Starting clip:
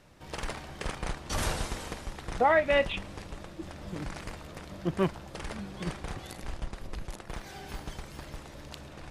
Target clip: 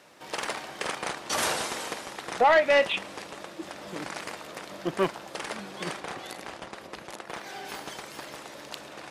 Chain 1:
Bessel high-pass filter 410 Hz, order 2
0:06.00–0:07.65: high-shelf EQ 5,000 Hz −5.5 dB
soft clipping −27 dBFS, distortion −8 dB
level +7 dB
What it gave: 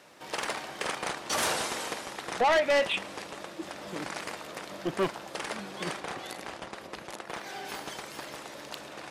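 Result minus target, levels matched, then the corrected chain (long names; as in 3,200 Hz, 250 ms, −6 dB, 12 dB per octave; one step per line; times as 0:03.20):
soft clipping: distortion +7 dB
Bessel high-pass filter 410 Hz, order 2
0:06.00–0:07.65: high-shelf EQ 5,000 Hz −5.5 dB
soft clipping −20 dBFS, distortion −15 dB
level +7 dB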